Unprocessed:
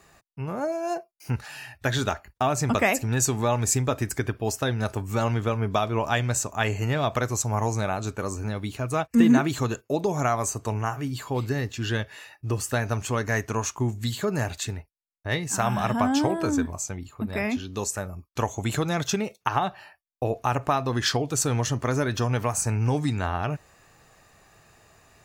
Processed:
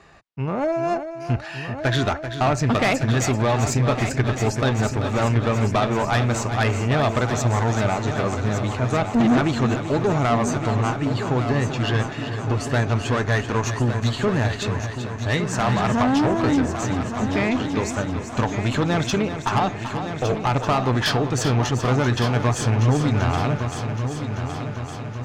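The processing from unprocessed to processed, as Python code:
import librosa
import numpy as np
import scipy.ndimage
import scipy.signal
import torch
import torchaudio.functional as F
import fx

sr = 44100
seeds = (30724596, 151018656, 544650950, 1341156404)

y = scipy.signal.sosfilt(scipy.signal.butter(2, 4100.0, 'lowpass', fs=sr, output='sos'), x)
y = fx.tube_stage(y, sr, drive_db=22.0, bias=0.35)
y = fx.echo_heads(y, sr, ms=387, heads='first and third', feedback_pct=65, wet_db=-10)
y = F.gain(torch.from_numpy(y), 7.5).numpy()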